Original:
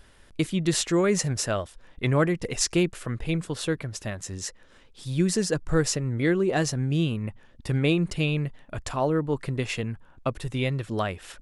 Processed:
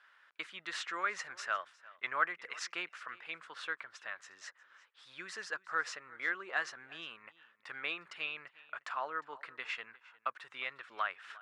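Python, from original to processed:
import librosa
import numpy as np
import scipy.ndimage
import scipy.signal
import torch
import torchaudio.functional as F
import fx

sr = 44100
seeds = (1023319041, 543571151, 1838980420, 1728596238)

y = fx.ladder_bandpass(x, sr, hz=1600.0, resonance_pct=45)
y = y + 10.0 ** (-21.5 / 20.0) * np.pad(y, (int(356 * sr / 1000.0), 0))[:len(y)]
y = F.gain(torch.from_numpy(y), 6.5).numpy()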